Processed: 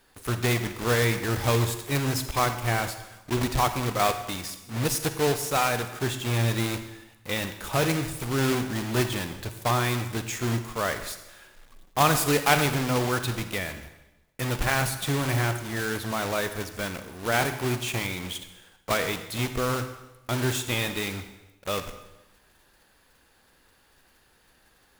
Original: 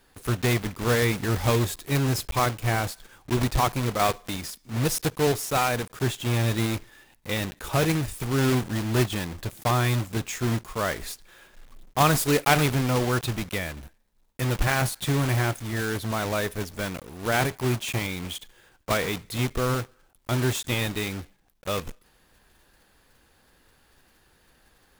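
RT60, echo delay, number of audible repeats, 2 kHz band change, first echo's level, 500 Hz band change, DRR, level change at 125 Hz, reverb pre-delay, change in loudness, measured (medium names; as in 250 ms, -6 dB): 1.0 s, no echo, no echo, +0.5 dB, no echo, -1.0 dB, 9.0 dB, -2.5 dB, 36 ms, -1.0 dB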